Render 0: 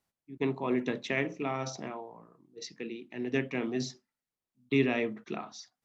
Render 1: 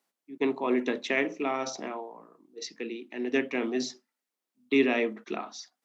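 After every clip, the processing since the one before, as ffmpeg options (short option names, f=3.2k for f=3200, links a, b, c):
-af "highpass=f=230:w=0.5412,highpass=f=230:w=1.3066,volume=4dB"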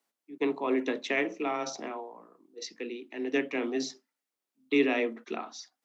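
-af "afreqshift=13,volume=-1.5dB"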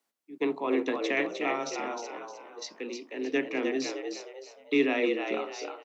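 -filter_complex "[0:a]asplit=5[a][b][c][d][e];[b]adelay=308,afreqshift=65,volume=-5.5dB[f];[c]adelay=616,afreqshift=130,volume=-14.4dB[g];[d]adelay=924,afreqshift=195,volume=-23.2dB[h];[e]adelay=1232,afreqshift=260,volume=-32.1dB[i];[a][f][g][h][i]amix=inputs=5:normalize=0"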